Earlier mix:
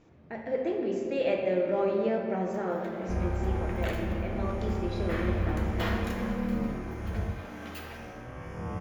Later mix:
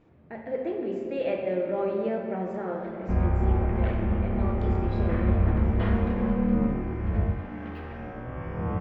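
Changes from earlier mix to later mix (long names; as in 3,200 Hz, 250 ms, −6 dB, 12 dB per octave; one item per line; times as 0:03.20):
speech: remove high-frequency loss of the air 210 metres
second sound +7.0 dB
master: add high-frequency loss of the air 430 metres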